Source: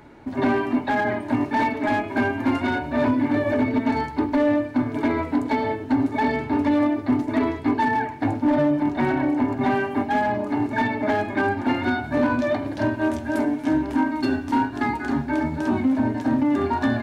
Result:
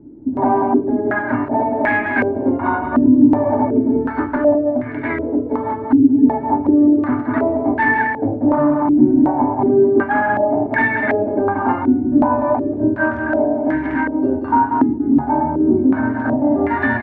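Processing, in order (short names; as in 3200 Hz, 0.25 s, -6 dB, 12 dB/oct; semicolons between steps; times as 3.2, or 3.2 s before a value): 4.36–6.69 rotary speaker horn 5 Hz; echo 0.187 s -5.5 dB; stepped low-pass 2.7 Hz 300–1900 Hz; gain +1 dB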